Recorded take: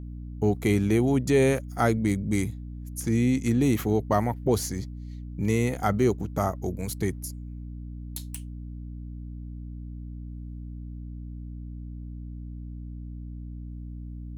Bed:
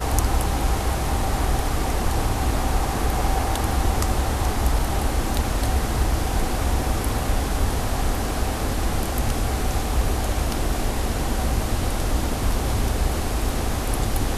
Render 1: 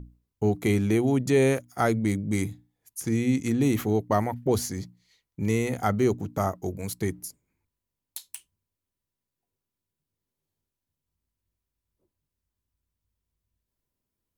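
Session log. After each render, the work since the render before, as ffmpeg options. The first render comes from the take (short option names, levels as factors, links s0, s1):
-af "bandreject=f=60:t=h:w=6,bandreject=f=120:t=h:w=6,bandreject=f=180:t=h:w=6,bandreject=f=240:t=h:w=6,bandreject=f=300:t=h:w=6"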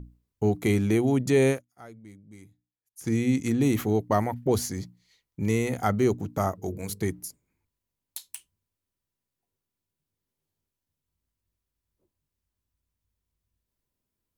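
-filter_complex "[0:a]asplit=3[s0][s1][s2];[s0]afade=t=out:st=6.57:d=0.02[s3];[s1]bandreject=f=50:t=h:w=6,bandreject=f=100:t=h:w=6,bandreject=f=150:t=h:w=6,bandreject=f=200:t=h:w=6,bandreject=f=250:t=h:w=6,bandreject=f=300:t=h:w=6,bandreject=f=350:t=h:w=6,bandreject=f=400:t=h:w=6,bandreject=f=450:t=h:w=6,bandreject=f=500:t=h:w=6,afade=t=in:st=6.57:d=0.02,afade=t=out:st=7:d=0.02[s4];[s2]afade=t=in:st=7:d=0.02[s5];[s3][s4][s5]amix=inputs=3:normalize=0,asplit=3[s6][s7][s8];[s6]atrim=end=1.68,asetpts=PTS-STARTPTS,afade=t=out:st=1.5:d=0.18:c=qua:silence=0.0749894[s9];[s7]atrim=start=1.68:end=2.9,asetpts=PTS-STARTPTS,volume=0.075[s10];[s8]atrim=start=2.9,asetpts=PTS-STARTPTS,afade=t=in:d=0.18:c=qua:silence=0.0749894[s11];[s9][s10][s11]concat=n=3:v=0:a=1"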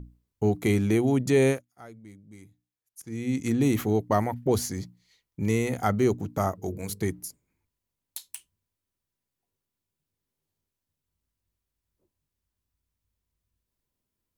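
-filter_complex "[0:a]asplit=2[s0][s1];[s0]atrim=end=3.02,asetpts=PTS-STARTPTS,afade=t=out:st=3.016:d=0.004:c=hsin:silence=0.105925[s2];[s1]atrim=start=3.02,asetpts=PTS-STARTPTS,afade=t=in:d=0.49:silence=0.105925[s3];[s2][s3]concat=n=2:v=0:a=1"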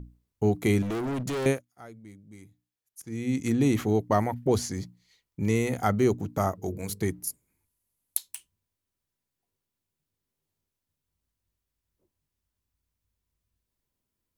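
-filter_complex "[0:a]asettb=1/sr,asplit=3[s0][s1][s2];[s0]atrim=end=0.824[s3];[s1]atrim=start=0.82:end=1.46,asetpts=PTS-STARTPTS,afade=t=in:d=0.004:c=qsin,afade=t=out:st=0.636:d=0.004:c=qsin,volume=26.6,asoftclip=hard,volume=0.0376[s4];[s2]atrim=start=1.456[s5];[s3][s4]acrossfade=d=0.004:c1=hsin:c2=qsin[s6];[s6][s5]acrossfade=d=0.004:c1=qsin:c2=hsin,asettb=1/sr,asplit=3[s7][s8][s9];[s7]atrim=end=3.574[s10];[s8]atrim=start=3.57:end=5.55,asetpts=PTS-STARTPTS,afade=t=in:d=0.004:c=qsin,afade=t=out:st=1.976:d=0.004:c=qsin,acrossover=split=9500[s11][s12];[s12]acompressor=threshold=0.00251:ratio=4:attack=1:release=60[s13];[s11][s13]amix=inputs=2:normalize=0[s14];[s9]atrim=start=5.546[s15];[s10][s14]acrossfade=d=0.004:c1=hsin:c2=qsin[s16];[s16][s15]acrossfade=d=0.004:c1=qsin:c2=hsin,asettb=1/sr,asplit=3[s17][s18][s19];[s17]atrim=end=7.274[s20];[s18]atrim=start=7.27:end=8.17,asetpts=PTS-STARTPTS,afade=t=in:d=0.004:c=qsin,afade=t=out:st=0.896:d=0.004:c=qsin,equalizer=f=11000:t=o:w=0.77:g=14[s21];[s19]atrim=start=8.166[s22];[s20][s21]acrossfade=d=0.004:c1=hsin:c2=qsin[s23];[s23][s22]acrossfade=d=0.004:c1=qsin:c2=hsin"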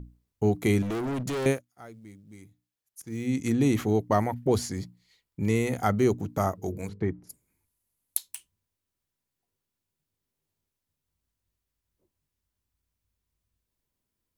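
-filter_complex "[0:a]asettb=1/sr,asplit=3[s0][s1][s2];[s0]atrim=end=1.514[s3];[s1]atrim=start=1.51:end=3.27,asetpts=PTS-STARTPTS,afade=t=in:d=0.004:c=qsin,afade=t=out:st=1.756:d=0.004:c=qsin,acrusher=bits=8:mode=log:mix=0:aa=0.000001[s4];[s2]atrim=start=3.266[s5];[s3][s4]acrossfade=d=0.004:c1=hsin:c2=qsin[s6];[s6][s5]acrossfade=d=0.004:c1=qsin:c2=hsin,asettb=1/sr,asplit=3[s7][s8][s9];[s7]atrim=end=4.494[s10];[s8]atrim=start=4.49:end=5.66,asetpts=PTS-STARTPTS,afade=t=in:d=0.004:c=qsin,afade=t=out:st=1.166:d=0.004:c=qsin,bandreject=f=6100:w=12[s11];[s9]atrim=start=5.656[s12];[s10][s11]acrossfade=d=0.004:c1=hsin:c2=qsin[s13];[s13][s12]acrossfade=d=0.004:c1=qsin:c2=hsin,asplit=3[s14][s15][s16];[s14]afade=t=out:st=6.87:d=0.02[s17];[s15]lowpass=1700,afade=t=in:st=6.87:d=0.02,afade=t=out:st=7.29:d=0.02[s18];[s16]afade=t=in:st=7.29:d=0.02[s19];[s17][s18][s19]amix=inputs=3:normalize=0"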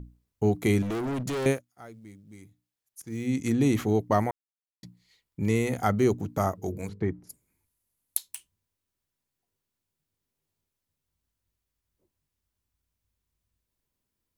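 -filter_complex "[0:a]asplit=3[s0][s1][s2];[s0]atrim=end=4.31,asetpts=PTS-STARTPTS,afade=t=out:st=4.306:d=0.004:c=hsin[s3];[s1]atrim=start=4.31:end=4.83,asetpts=PTS-STARTPTS,volume=0[s4];[s2]atrim=start=4.83,asetpts=PTS-STARTPTS,afade=t=in:d=0.004:c=hsin[s5];[s3][s4][s5]concat=n=3:v=0:a=1"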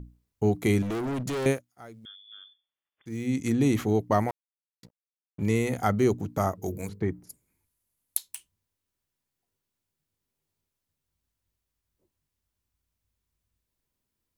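-filter_complex "[0:a]asettb=1/sr,asplit=3[s0][s1][s2];[s0]atrim=end=2.054[s3];[s1]atrim=start=2.05:end=3.06,asetpts=PTS-STARTPTS,afade=t=in:d=0.004:c=qsin,afade=t=out:st=1.006:d=0.004:c=qsin,lowpass=f=3100:t=q:w=0.5098,lowpass=f=3100:t=q:w=0.6013,lowpass=f=3100:t=q:w=0.9,lowpass=f=3100:t=q:w=2.563,afreqshift=-3600[s4];[s2]atrim=start=3.056[s5];[s3][s4]acrossfade=d=0.004:c1=hsin:c2=qsin[s6];[s6][s5]acrossfade=d=0.004:c1=qsin:c2=hsin,asettb=1/sr,asplit=3[s7][s8][s9];[s7]atrim=end=4.284[s10];[s8]atrim=start=4.28:end=5.43,asetpts=PTS-STARTPTS,afade=t=in:d=0.004:c=qsin,afade=t=out:st=1.146:d=0.004:c=qsin,aeval=exprs='sgn(val(0))*max(abs(val(0))-0.00447,0)':c=same[s11];[s9]atrim=start=5.426[s12];[s10][s11]acrossfade=d=0.004:c1=hsin:c2=qsin[s13];[s13][s12]acrossfade=d=0.004:c1=qsin:c2=hsin,asettb=1/sr,asplit=3[s14][s15][s16];[s14]atrim=end=6.624[s17];[s15]atrim=start=6.62:end=7.26,asetpts=PTS-STARTPTS,afade=t=in:d=0.004:c=qsin,afade=t=out:st=0.636:d=0.004:c=qsin,highshelf=f=9100:g=11.5[s18];[s16]atrim=start=7.256[s19];[s17][s18]acrossfade=d=0.004:c1=hsin:c2=qsin[s20];[s20][s19]acrossfade=d=0.004:c1=qsin:c2=hsin"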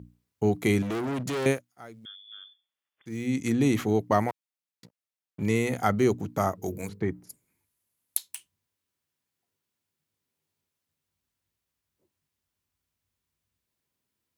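-af "highpass=94,equalizer=f=2300:w=0.57:g=2.5"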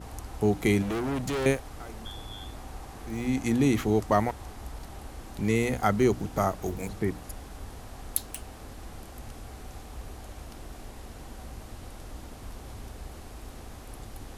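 -filter_complex "[1:a]volume=0.106[s0];[0:a][s0]amix=inputs=2:normalize=0"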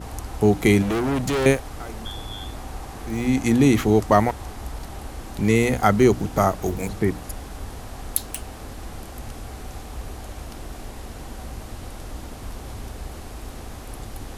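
-af "volume=2.24,alimiter=limit=0.794:level=0:latency=1"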